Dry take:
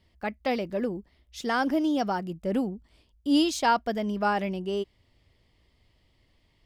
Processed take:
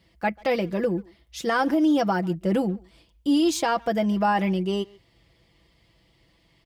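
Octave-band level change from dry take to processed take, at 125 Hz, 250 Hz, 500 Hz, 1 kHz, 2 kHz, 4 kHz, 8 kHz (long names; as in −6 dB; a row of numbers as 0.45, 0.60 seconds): +8.0, +4.0, +4.5, +2.0, +2.5, +0.5, +4.0 decibels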